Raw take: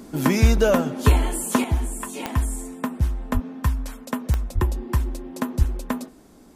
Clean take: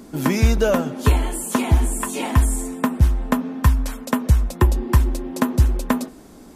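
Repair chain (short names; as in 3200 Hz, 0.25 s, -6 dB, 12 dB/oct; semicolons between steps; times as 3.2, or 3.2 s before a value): de-click; 3.33–3.45 HPF 140 Hz 24 dB/oct; 4.54–4.66 HPF 140 Hz 24 dB/oct; 5.58–5.7 HPF 140 Hz 24 dB/oct; gain 0 dB, from 1.64 s +6.5 dB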